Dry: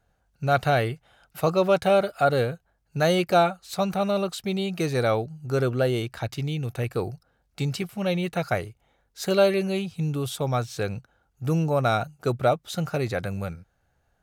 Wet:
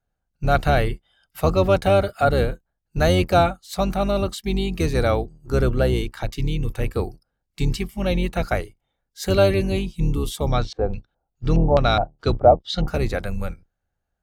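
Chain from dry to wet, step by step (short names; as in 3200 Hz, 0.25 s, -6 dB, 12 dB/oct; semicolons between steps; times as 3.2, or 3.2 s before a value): octaver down 2 oct, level +3 dB; spectral noise reduction 14 dB; 10.52–12.88 LFO low-pass square 2.4 Hz 740–4200 Hz; gain +2 dB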